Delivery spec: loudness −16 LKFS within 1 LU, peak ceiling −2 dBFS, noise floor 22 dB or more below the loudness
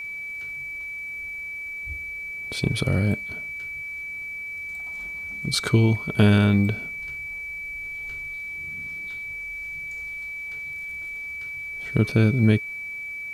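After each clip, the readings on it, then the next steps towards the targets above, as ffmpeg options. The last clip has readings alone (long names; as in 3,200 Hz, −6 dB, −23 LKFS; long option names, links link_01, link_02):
interfering tone 2,300 Hz; level of the tone −31 dBFS; integrated loudness −26.0 LKFS; sample peak −6.5 dBFS; target loudness −16.0 LKFS
→ -af "bandreject=frequency=2300:width=30"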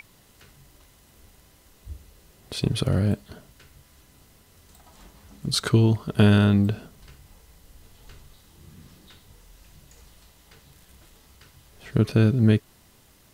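interfering tone none found; integrated loudness −22.0 LKFS; sample peak −6.5 dBFS; target loudness −16.0 LKFS
→ -af "volume=6dB,alimiter=limit=-2dB:level=0:latency=1"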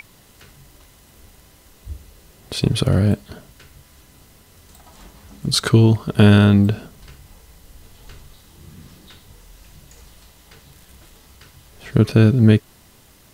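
integrated loudness −16.5 LKFS; sample peak −2.0 dBFS; background noise floor −51 dBFS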